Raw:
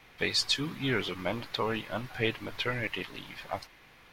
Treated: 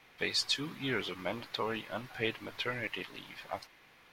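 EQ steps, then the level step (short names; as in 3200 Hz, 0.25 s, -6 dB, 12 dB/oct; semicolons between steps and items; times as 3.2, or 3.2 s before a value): low shelf 110 Hz -10 dB; -3.5 dB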